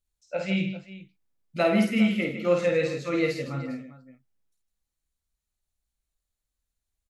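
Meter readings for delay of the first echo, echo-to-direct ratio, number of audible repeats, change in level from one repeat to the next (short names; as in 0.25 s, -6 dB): 51 ms, -3.0 dB, 3, no steady repeat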